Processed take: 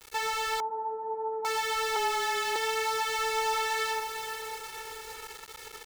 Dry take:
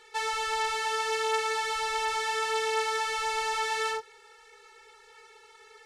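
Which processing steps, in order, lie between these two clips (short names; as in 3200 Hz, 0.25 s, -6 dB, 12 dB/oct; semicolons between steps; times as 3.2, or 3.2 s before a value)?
compressor 1.5:1, threshold -46 dBFS, peak gain reduction 8.5 dB; diffused feedback echo 0.479 s, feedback 47%, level -8 dB; 1.96–2.56 frequency shift -24 Hz; requantised 8-bit, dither none; 0.6–1.45 Chebyshev band-pass 180–1000 Hz, order 4; gain +6.5 dB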